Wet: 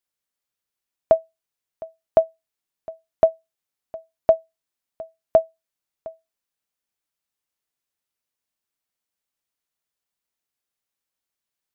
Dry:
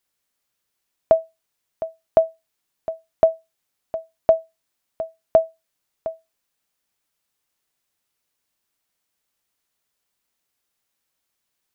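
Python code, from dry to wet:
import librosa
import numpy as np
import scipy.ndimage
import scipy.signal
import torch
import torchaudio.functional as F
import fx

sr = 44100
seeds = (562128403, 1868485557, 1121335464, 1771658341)

y = fx.upward_expand(x, sr, threshold_db=-28.0, expansion=1.5)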